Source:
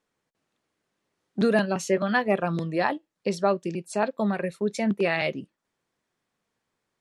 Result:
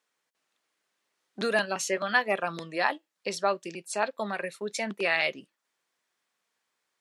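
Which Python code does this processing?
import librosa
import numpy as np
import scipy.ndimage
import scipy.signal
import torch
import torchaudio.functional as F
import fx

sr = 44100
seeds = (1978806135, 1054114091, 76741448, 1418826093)

y = fx.highpass(x, sr, hz=1300.0, slope=6)
y = F.gain(torch.from_numpy(y), 3.5).numpy()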